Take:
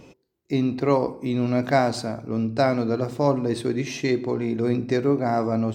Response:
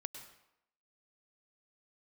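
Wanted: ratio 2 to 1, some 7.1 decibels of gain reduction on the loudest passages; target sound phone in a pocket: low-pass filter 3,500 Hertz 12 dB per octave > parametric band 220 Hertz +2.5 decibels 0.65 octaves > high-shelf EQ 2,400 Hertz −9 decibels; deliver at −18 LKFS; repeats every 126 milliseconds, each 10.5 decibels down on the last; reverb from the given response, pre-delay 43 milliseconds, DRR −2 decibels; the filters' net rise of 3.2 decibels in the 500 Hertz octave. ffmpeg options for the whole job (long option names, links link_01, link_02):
-filter_complex "[0:a]equalizer=frequency=500:width_type=o:gain=4.5,acompressor=threshold=-25dB:ratio=2,aecho=1:1:126|252|378:0.299|0.0896|0.0269,asplit=2[link_01][link_02];[1:a]atrim=start_sample=2205,adelay=43[link_03];[link_02][link_03]afir=irnorm=-1:irlink=0,volume=4.5dB[link_04];[link_01][link_04]amix=inputs=2:normalize=0,lowpass=3500,equalizer=frequency=220:width_type=o:width=0.65:gain=2.5,highshelf=frequency=2400:gain=-9,volume=4dB"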